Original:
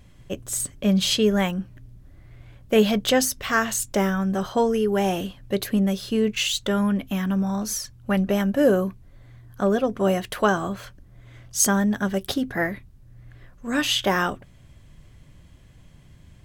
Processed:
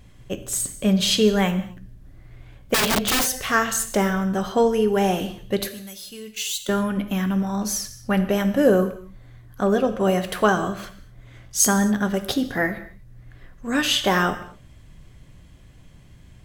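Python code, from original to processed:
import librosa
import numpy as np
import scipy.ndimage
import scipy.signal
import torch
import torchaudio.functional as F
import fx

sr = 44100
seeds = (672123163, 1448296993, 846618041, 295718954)

y = fx.pre_emphasis(x, sr, coefficient=0.9, at=(5.68, 6.69))
y = fx.rev_gated(y, sr, seeds[0], gate_ms=280, shape='falling', drr_db=8.5)
y = fx.overflow_wrap(y, sr, gain_db=16.5, at=(2.74, 3.27))
y = y * librosa.db_to_amplitude(1.5)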